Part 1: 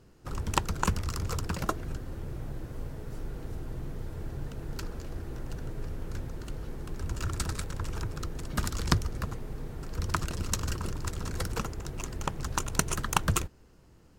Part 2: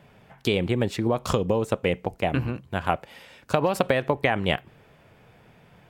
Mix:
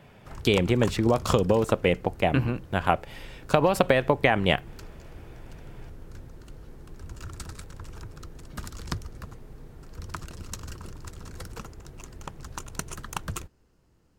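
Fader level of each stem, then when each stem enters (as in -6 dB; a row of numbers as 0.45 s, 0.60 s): -7.0 dB, +1.5 dB; 0.00 s, 0.00 s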